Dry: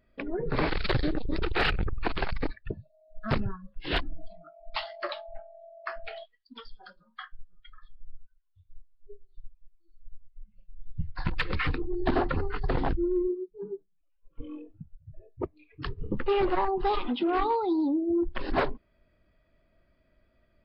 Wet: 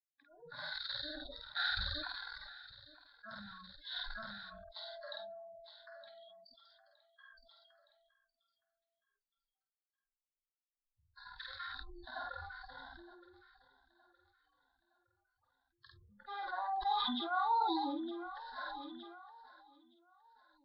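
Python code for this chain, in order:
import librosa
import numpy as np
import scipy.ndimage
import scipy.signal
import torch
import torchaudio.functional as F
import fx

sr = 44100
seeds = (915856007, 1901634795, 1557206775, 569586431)

p1 = fx.bin_expand(x, sr, power=1.5)
p2 = fx.double_bandpass(p1, sr, hz=2300.0, octaves=1.4)
p3 = fx.hpss(p2, sr, part='percussive', gain_db=-17)
p4 = fx.noise_reduce_blind(p3, sr, reduce_db=22)
p5 = fx.fixed_phaser(p4, sr, hz=1900.0, stages=8)
p6 = fx.doubler(p5, sr, ms=49.0, db=-4)
p7 = p6 + fx.echo_feedback(p6, sr, ms=916, feedback_pct=40, wet_db=-19, dry=0)
p8 = fx.sustainer(p7, sr, db_per_s=21.0)
y = p8 * librosa.db_to_amplitude(12.5)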